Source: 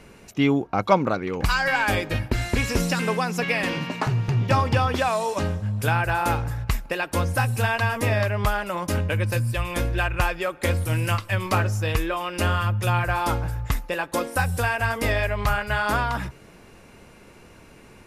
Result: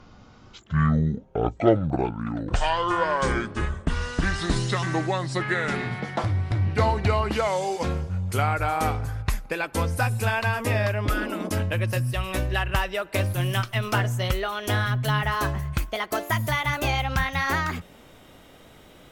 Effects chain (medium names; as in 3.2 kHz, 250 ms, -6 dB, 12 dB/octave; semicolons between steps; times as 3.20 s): gliding tape speed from 51% -> 138%; spectral replace 11.08–11.46 s, 210–1200 Hz after; trim -1.5 dB